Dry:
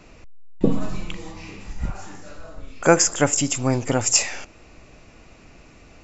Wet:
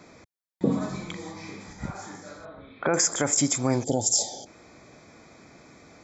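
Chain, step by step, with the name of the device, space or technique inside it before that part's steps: PA system with an anti-feedback notch (high-pass 130 Hz 12 dB/octave; Butterworth band-stop 2.8 kHz, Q 4.1; peak limiter -11.5 dBFS, peak gain reduction 11.5 dB); 2.45–2.94 s: Chebyshev low-pass 3.9 kHz, order 6; 3.84–4.46 s: time-frequency box 890–3000 Hz -29 dB

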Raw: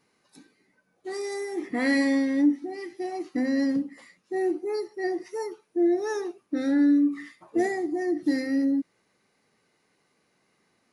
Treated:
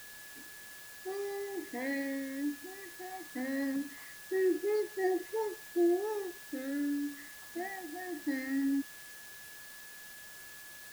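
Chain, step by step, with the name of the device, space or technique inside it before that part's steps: shortwave radio (band-pass 320–2700 Hz; tremolo 0.21 Hz, depth 69%; LFO notch sine 0.22 Hz 400–1800 Hz; whistle 1.7 kHz -51 dBFS; white noise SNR 15 dB)

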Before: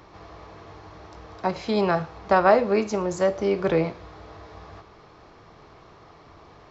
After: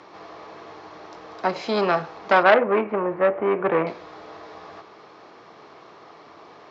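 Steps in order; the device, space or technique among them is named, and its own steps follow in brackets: 2.43–3.87 s: steep low-pass 2.4 kHz 36 dB/octave; public-address speaker with an overloaded transformer (transformer saturation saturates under 1.4 kHz; band-pass 260–6400 Hz); trim +4.5 dB

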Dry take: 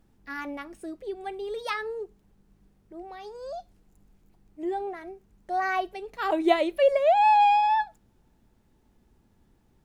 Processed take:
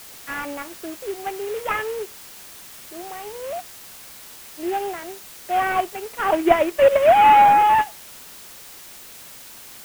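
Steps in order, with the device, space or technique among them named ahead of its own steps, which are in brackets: army field radio (band-pass 360–3300 Hz; CVSD coder 16 kbps; white noise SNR 20 dB); trim +7.5 dB

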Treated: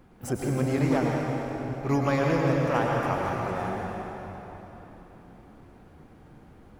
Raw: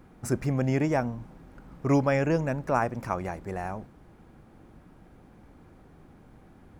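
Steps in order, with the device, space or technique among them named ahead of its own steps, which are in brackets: shimmer-style reverb (harmony voices +12 st -12 dB; reverberation RT60 3.8 s, pre-delay 91 ms, DRR -2 dB); trim -2.5 dB

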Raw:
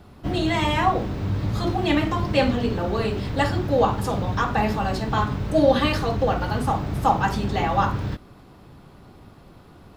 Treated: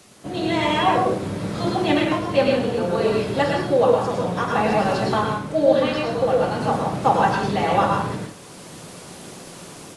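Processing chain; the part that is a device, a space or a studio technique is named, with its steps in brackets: filmed off a television (band-pass 150–6700 Hz; peaking EQ 540 Hz +5.5 dB 0.57 oct; reverberation RT60 0.40 s, pre-delay 98 ms, DRR 0.5 dB; white noise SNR 26 dB; level rider gain up to 9.5 dB; trim -4.5 dB; AAC 48 kbps 24 kHz)

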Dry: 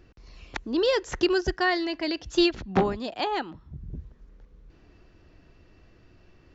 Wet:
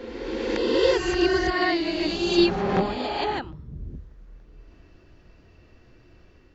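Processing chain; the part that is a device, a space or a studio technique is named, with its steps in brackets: reverse reverb (reverse; reverberation RT60 2.4 s, pre-delay 15 ms, DRR -3 dB; reverse); trim -2 dB

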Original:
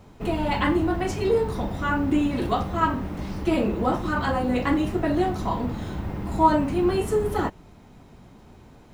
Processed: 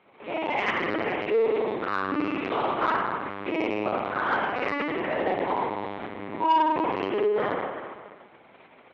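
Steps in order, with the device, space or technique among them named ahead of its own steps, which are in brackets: 4.18–4.65 s: high-pass 86 Hz 12 dB/octave; spring tank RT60 1.7 s, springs 50 ms, chirp 35 ms, DRR -7 dB; talking toy (LPC vocoder at 8 kHz pitch kept; high-pass 400 Hz 12 dB/octave; peaking EQ 2.2 kHz +8 dB 0.41 oct; saturation -9 dBFS, distortion -19 dB); trim -5.5 dB

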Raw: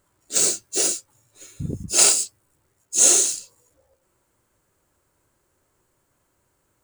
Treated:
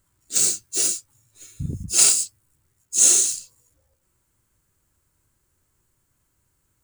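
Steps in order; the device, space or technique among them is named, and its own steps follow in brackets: smiley-face EQ (bass shelf 170 Hz +7.5 dB; peaking EQ 560 Hz -8 dB 1.8 oct; treble shelf 5.8 kHz +5 dB); trim -3 dB

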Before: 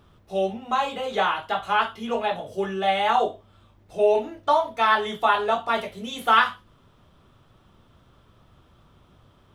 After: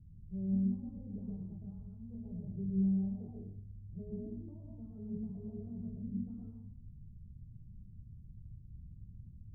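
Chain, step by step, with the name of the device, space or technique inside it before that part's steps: 1.58–2.25 s: peaking EQ 270 Hz -10.5 dB 1.6 oct; club heard from the street (peak limiter -15.5 dBFS, peak gain reduction 9.5 dB; low-pass 170 Hz 24 dB/octave; reverberation RT60 0.60 s, pre-delay 113 ms, DRR -1 dB); trim +3 dB

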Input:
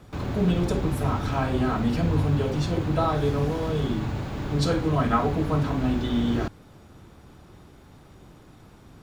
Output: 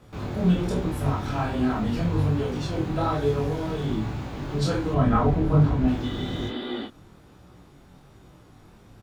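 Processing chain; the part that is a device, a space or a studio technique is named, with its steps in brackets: 6.13–6.82 s: spectral replace 200–5000 Hz before; double-tracked vocal (doubling 28 ms -4 dB; chorus 1.2 Hz, delay 16 ms, depth 6.9 ms); 4.94–5.88 s: tilt EQ -2 dB/octave

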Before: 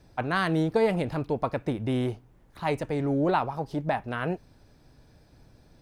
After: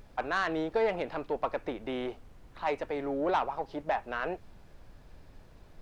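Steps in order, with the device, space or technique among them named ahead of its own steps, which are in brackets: aircraft cabin announcement (band-pass 430–3600 Hz; saturation -19.5 dBFS, distortion -16 dB; brown noise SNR 17 dB)

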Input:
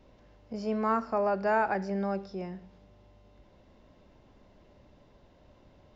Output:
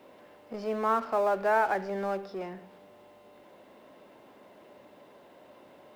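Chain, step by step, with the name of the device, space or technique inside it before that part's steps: phone line with mismatched companding (band-pass 330–3300 Hz; companding laws mixed up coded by mu); trim +1 dB

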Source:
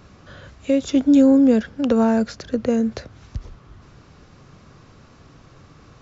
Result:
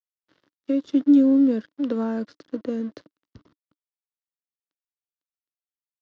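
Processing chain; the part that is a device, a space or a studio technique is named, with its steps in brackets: blown loudspeaker (crossover distortion -36.5 dBFS; cabinet simulation 170–5100 Hz, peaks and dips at 300 Hz +10 dB, 770 Hz -8 dB, 2.4 kHz -7 dB); trim -8 dB

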